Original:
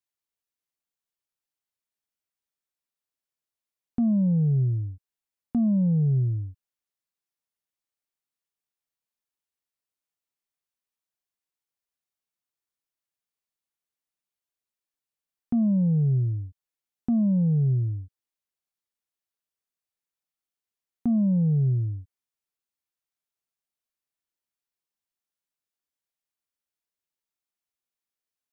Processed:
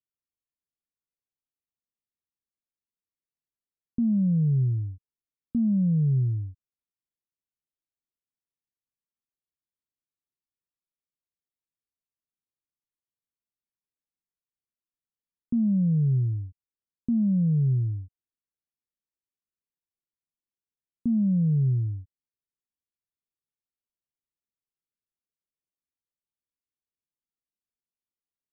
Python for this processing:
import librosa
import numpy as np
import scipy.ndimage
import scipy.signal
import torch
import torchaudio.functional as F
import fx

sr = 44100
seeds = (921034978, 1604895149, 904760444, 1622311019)

y = np.convolve(x, np.full(58, 1.0 / 58))[:len(x)]